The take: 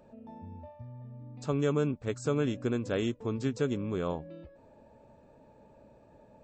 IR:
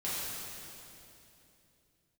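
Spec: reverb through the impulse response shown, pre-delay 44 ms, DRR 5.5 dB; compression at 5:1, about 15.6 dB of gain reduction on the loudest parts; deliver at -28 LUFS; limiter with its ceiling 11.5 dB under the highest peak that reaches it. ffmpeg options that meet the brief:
-filter_complex "[0:a]acompressor=threshold=0.00794:ratio=5,alimiter=level_in=7.08:limit=0.0631:level=0:latency=1,volume=0.141,asplit=2[s0][s1];[1:a]atrim=start_sample=2205,adelay=44[s2];[s1][s2]afir=irnorm=-1:irlink=0,volume=0.266[s3];[s0][s3]amix=inputs=2:normalize=0,volume=12.6"

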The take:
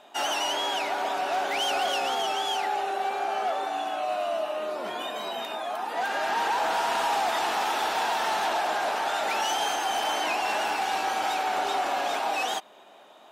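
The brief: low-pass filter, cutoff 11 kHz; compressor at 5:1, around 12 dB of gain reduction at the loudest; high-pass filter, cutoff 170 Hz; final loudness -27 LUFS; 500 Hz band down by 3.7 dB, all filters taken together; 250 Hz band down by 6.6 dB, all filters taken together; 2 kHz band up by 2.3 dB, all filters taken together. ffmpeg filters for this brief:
-af "highpass=170,lowpass=11000,equalizer=f=250:t=o:g=-6.5,equalizer=f=500:t=o:g=-4.5,equalizer=f=2000:t=o:g=3.5,acompressor=threshold=0.0126:ratio=5,volume=3.76"

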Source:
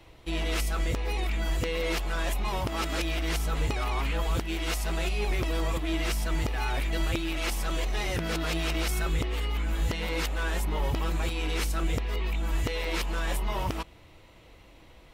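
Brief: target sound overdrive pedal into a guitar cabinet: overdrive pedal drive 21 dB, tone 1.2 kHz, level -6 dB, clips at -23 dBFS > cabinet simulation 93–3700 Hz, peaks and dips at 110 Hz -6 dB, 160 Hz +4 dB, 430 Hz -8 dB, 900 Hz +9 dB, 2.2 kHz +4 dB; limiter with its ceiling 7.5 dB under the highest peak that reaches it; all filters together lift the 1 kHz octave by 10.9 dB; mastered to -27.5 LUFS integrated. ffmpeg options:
-filter_complex "[0:a]equalizer=f=1000:t=o:g=7,alimiter=limit=0.0708:level=0:latency=1,asplit=2[s0][s1];[s1]highpass=f=720:p=1,volume=11.2,asoftclip=type=tanh:threshold=0.0708[s2];[s0][s2]amix=inputs=2:normalize=0,lowpass=f=1200:p=1,volume=0.501,highpass=93,equalizer=f=110:t=q:w=4:g=-6,equalizer=f=160:t=q:w=4:g=4,equalizer=f=430:t=q:w=4:g=-8,equalizer=f=900:t=q:w=4:g=9,equalizer=f=2200:t=q:w=4:g=4,lowpass=f=3700:w=0.5412,lowpass=f=3700:w=1.3066,volume=1.26"

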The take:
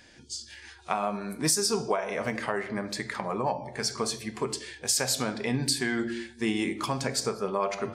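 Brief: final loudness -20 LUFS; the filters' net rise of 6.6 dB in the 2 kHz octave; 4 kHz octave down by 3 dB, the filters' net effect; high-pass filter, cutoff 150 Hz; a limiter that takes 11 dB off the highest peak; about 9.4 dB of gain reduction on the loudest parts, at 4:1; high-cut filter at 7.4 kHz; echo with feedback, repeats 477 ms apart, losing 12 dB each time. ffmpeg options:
-af "highpass=150,lowpass=7400,equalizer=f=2000:t=o:g=9,equalizer=f=4000:t=o:g=-5,acompressor=threshold=0.02:ratio=4,alimiter=level_in=1.33:limit=0.0631:level=0:latency=1,volume=0.75,aecho=1:1:477|954|1431:0.251|0.0628|0.0157,volume=7.94"

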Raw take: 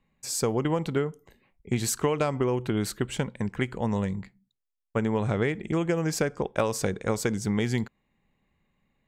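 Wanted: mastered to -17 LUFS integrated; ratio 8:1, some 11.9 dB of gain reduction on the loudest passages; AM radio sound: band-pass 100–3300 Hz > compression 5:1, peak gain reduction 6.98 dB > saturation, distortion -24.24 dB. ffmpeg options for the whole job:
-af "acompressor=threshold=0.02:ratio=8,highpass=100,lowpass=3300,acompressor=threshold=0.0126:ratio=5,asoftclip=threshold=0.0355,volume=25.1"

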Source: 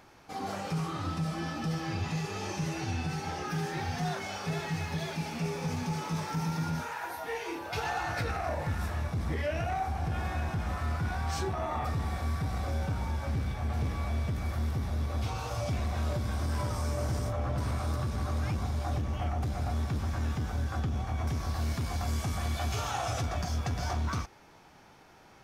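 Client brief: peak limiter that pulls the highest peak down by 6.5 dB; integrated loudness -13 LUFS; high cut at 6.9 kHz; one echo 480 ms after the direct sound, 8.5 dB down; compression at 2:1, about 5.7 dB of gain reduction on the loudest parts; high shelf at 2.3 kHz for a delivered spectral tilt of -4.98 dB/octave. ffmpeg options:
-af "lowpass=6900,highshelf=f=2300:g=7,acompressor=threshold=0.0126:ratio=2,alimiter=level_in=2.37:limit=0.0631:level=0:latency=1,volume=0.422,aecho=1:1:480:0.376,volume=20"

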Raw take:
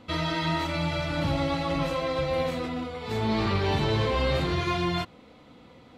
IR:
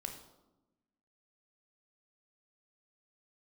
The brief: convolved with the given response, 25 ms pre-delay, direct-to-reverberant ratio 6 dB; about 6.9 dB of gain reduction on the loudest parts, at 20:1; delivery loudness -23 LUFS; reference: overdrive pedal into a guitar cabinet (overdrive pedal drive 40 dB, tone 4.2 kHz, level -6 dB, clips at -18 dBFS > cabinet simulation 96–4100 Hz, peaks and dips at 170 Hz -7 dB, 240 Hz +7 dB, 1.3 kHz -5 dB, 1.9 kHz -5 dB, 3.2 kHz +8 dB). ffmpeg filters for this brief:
-filter_complex "[0:a]acompressor=threshold=0.0398:ratio=20,asplit=2[s0][s1];[1:a]atrim=start_sample=2205,adelay=25[s2];[s1][s2]afir=irnorm=-1:irlink=0,volume=0.596[s3];[s0][s3]amix=inputs=2:normalize=0,asplit=2[s4][s5];[s5]highpass=f=720:p=1,volume=100,asoftclip=type=tanh:threshold=0.126[s6];[s4][s6]amix=inputs=2:normalize=0,lowpass=f=4200:p=1,volume=0.501,highpass=96,equalizer=f=170:t=q:w=4:g=-7,equalizer=f=240:t=q:w=4:g=7,equalizer=f=1300:t=q:w=4:g=-5,equalizer=f=1900:t=q:w=4:g=-5,equalizer=f=3200:t=q:w=4:g=8,lowpass=f=4100:w=0.5412,lowpass=f=4100:w=1.3066,volume=1.06"

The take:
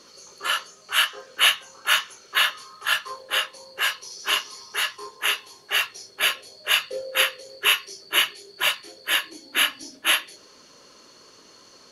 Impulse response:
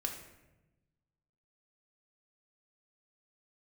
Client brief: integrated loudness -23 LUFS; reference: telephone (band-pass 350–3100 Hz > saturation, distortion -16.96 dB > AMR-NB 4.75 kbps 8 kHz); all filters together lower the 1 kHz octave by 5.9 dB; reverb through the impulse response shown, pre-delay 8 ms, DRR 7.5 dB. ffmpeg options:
-filter_complex "[0:a]equalizer=f=1000:t=o:g=-8,asplit=2[s0][s1];[1:a]atrim=start_sample=2205,adelay=8[s2];[s1][s2]afir=irnorm=-1:irlink=0,volume=0.376[s3];[s0][s3]amix=inputs=2:normalize=0,highpass=350,lowpass=3100,asoftclip=threshold=0.168,volume=3.55" -ar 8000 -c:a libopencore_amrnb -b:a 4750

